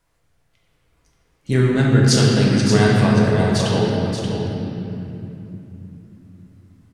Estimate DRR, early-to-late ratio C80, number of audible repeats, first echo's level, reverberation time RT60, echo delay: -5.5 dB, -1.0 dB, 1, -7.5 dB, 2.9 s, 580 ms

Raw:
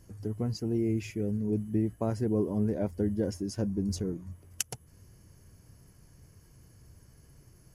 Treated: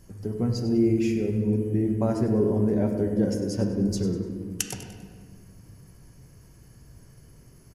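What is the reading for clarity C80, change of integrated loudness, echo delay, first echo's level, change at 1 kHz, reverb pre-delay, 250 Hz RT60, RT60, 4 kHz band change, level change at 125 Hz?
5.5 dB, +6.0 dB, 99 ms, -12.0 dB, +5.5 dB, 4 ms, 3.0 s, 1.7 s, +4.5 dB, +5.5 dB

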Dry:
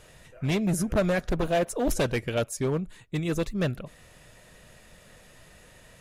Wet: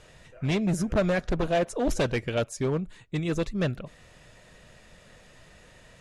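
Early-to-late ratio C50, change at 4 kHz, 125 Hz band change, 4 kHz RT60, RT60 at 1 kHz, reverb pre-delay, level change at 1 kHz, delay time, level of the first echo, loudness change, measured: no reverb, 0.0 dB, 0.0 dB, no reverb, no reverb, no reverb, 0.0 dB, no echo, no echo, 0.0 dB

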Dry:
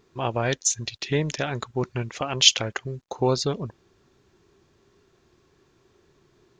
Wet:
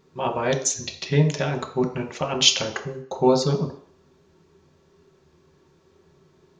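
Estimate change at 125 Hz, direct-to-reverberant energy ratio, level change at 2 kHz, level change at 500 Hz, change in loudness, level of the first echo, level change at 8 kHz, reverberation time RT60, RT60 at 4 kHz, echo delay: +3.5 dB, 1.0 dB, 0.0 dB, +4.0 dB, +1.5 dB, no echo, -0.5 dB, 0.55 s, 0.60 s, no echo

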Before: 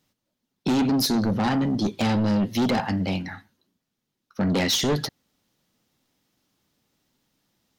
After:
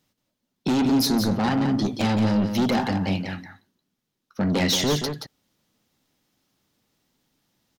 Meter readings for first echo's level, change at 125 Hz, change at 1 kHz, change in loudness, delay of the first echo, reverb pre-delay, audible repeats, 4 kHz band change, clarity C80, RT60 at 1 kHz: -7.5 dB, +1.0 dB, +1.0 dB, +0.5 dB, 176 ms, no reverb, 1, +0.5 dB, no reverb, no reverb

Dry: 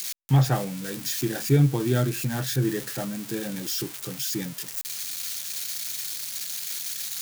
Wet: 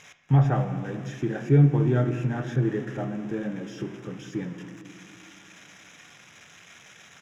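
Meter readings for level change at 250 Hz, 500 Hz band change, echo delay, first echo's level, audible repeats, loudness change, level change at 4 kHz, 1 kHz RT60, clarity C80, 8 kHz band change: +1.0 dB, +0.5 dB, 235 ms, -19.0 dB, 1, +1.0 dB, -16.0 dB, 1.7 s, 9.5 dB, under -20 dB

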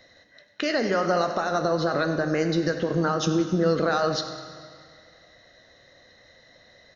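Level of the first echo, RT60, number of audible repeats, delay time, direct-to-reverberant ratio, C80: -14.0 dB, 2.1 s, 1, 97 ms, 5.5 dB, 7.5 dB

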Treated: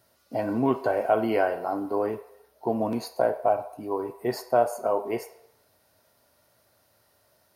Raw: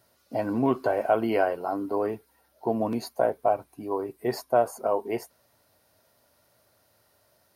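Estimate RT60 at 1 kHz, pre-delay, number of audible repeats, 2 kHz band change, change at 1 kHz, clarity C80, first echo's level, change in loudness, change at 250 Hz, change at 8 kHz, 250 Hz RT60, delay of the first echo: 0.75 s, 12 ms, no echo, +1.0 dB, +0.5 dB, 15.0 dB, no echo, +0.5 dB, 0.0 dB, 0.0 dB, 0.85 s, no echo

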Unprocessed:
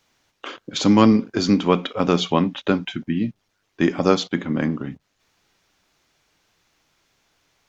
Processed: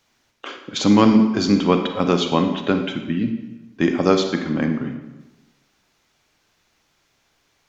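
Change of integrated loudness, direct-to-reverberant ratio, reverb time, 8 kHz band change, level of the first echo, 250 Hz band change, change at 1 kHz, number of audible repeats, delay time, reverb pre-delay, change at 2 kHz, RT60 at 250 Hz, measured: +1.0 dB, 6.0 dB, 1.1 s, no reading, no echo, +1.5 dB, +1.0 dB, no echo, no echo, 35 ms, +1.0 dB, 1.1 s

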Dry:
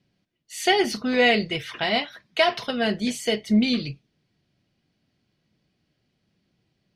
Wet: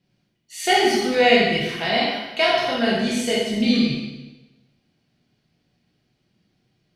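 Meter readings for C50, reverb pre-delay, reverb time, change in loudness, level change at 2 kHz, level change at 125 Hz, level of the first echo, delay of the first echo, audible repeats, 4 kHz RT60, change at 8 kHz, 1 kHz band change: 0.0 dB, 8 ms, 1.1 s, +3.5 dB, +3.0 dB, +3.0 dB, no echo, no echo, no echo, 1.0 s, +4.0 dB, +4.5 dB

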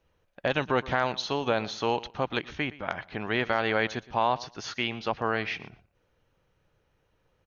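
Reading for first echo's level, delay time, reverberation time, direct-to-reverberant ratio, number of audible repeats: -19.0 dB, 118 ms, no reverb, no reverb, 2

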